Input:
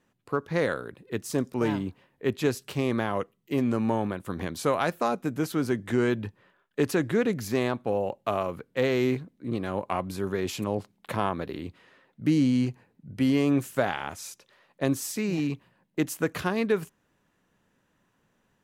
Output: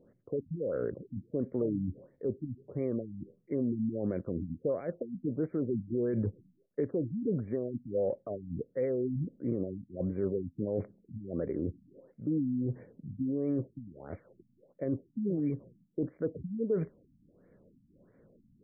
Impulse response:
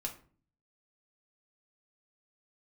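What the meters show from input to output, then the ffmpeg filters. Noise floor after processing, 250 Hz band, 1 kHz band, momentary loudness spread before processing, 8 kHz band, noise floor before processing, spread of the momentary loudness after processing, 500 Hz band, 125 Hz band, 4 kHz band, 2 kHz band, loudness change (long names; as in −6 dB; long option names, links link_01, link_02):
−70 dBFS, −6.0 dB, −23.0 dB, 11 LU, below −40 dB, −72 dBFS, 10 LU, −5.5 dB, −4.5 dB, below −40 dB, below −20 dB, −6.5 dB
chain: -af "lowpass=frequency=4500:width_type=q:width=6.6,areverse,acompressor=threshold=-34dB:ratio=8,areverse,alimiter=level_in=8dB:limit=-24dB:level=0:latency=1:release=41,volume=-8dB,lowshelf=frequency=690:width_type=q:width=3:gain=8,afftfilt=real='re*lt(b*sr/1024,270*pow(2400/270,0.5+0.5*sin(2*PI*1.5*pts/sr)))':imag='im*lt(b*sr/1024,270*pow(2400/270,0.5+0.5*sin(2*PI*1.5*pts/sr)))':win_size=1024:overlap=0.75"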